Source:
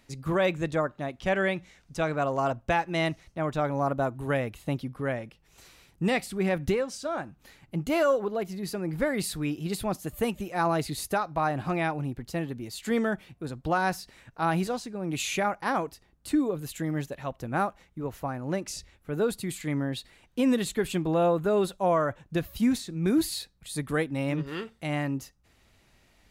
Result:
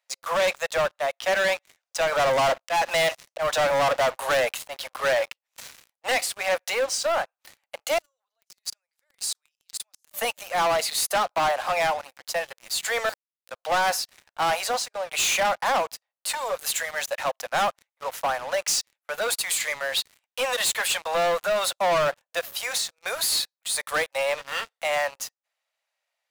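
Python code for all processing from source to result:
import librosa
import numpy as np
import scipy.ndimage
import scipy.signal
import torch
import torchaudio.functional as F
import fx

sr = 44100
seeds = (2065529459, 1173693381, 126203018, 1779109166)

y = fx.chain(x, sr, fx.leveller(passes=2),
    fx.auto_swell(attack_ms=156.0), at=(2.12, 6.12))
y = fx.chain(y, sr, fx.level_steps(step_db=19),
    fx.bandpass_q(hz=6500.0, q=1.2), at=(7.98, 10.11))
y = fx.chain(y, sr, fx.highpass(hz=1400.0, slope=12),
    fx.schmitt(flips_db=-36.0), at=(13.09, 13.51))
y = fx.chain(y, sr, fx.leveller(passes=1),
    fx.highpass(hz=670.0, slope=6), at=(16.29, 21.77))
y = scipy.signal.sosfilt(scipy.signal.butter(12, 520.0, 'highpass', fs=sr, output='sos'), y)
y = fx.dynamic_eq(y, sr, hz=6100.0, q=0.91, threshold_db=-50.0, ratio=4.0, max_db=3)
y = fx.leveller(y, sr, passes=5)
y = F.gain(torch.from_numpy(y), -6.5).numpy()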